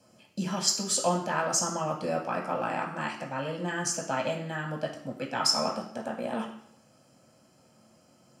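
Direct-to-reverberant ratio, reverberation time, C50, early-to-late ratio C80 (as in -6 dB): -1.5 dB, 0.70 s, 7.5 dB, 10.0 dB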